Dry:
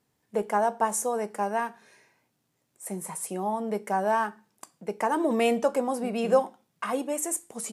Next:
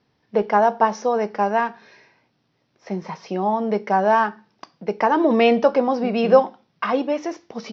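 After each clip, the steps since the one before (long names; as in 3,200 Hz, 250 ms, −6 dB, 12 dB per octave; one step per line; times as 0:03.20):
Butterworth low-pass 5,700 Hz 96 dB per octave
level +8 dB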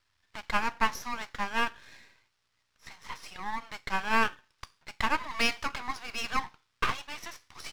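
inverse Chebyshev band-stop filter 200–490 Hz, stop band 60 dB
half-wave rectification
level +2.5 dB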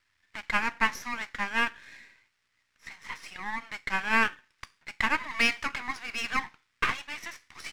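octave-band graphic EQ 250/2,000/8,000 Hz +5/+10/+4 dB
level −3.5 dB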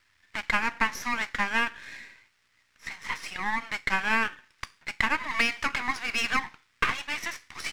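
downward compressor 4 to 1, threshold −28 dBFS, peak gain reduction 9.5 dB
level +6.5 dB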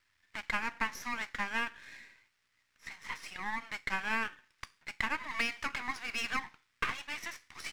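high-shelf EQ 11,000 Hz +3 dB
level −8 dB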